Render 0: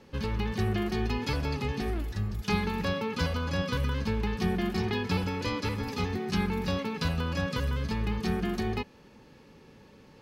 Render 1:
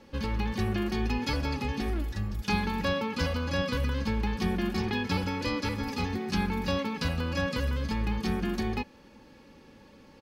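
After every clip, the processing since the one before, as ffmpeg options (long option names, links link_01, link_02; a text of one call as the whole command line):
ffmpeg -i in.wav -af "aecho=1:1:3.6:0.4" out.wav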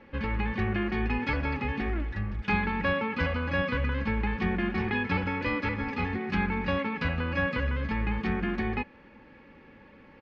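ffmpeg -i in.wav -af "lowpass=frequency=2100:width_type=q:width=2.1" out.wav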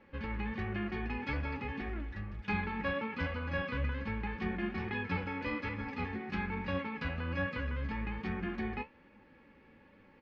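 ffmpeg -i in.wav -af "flanger=delay=9.6:depth=5.4:regen=58:speed=1.2:shape=triangular,volume=-3.5dB" out.wav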